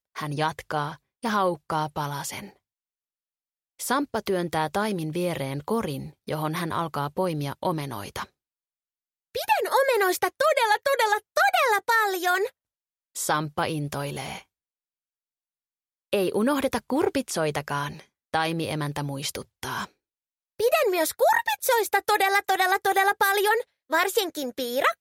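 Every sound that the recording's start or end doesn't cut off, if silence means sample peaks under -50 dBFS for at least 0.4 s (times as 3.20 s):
3.79–8.27 s
9.35–12.50 s
13.15–14.43 s
16.13–19.89 s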